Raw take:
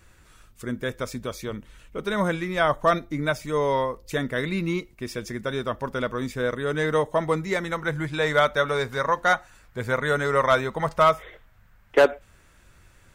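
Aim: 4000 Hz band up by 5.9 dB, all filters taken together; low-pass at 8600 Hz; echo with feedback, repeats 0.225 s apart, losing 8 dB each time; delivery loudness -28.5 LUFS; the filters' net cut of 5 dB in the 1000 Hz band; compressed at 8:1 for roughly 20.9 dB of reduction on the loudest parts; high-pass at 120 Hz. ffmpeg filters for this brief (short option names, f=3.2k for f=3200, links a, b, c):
-af "highpass=120,lowpass=8.6k,equalizer=f=1k:t=o:g=-7.5,equalizer=f=4k:t=o:g=7.5,acompressor=threshold=-36dB:ratio=8,aecho=1:1:225|450|675|900|1125:0.398|0.159|0.0637|0.0255|0.0102,volume=11dB"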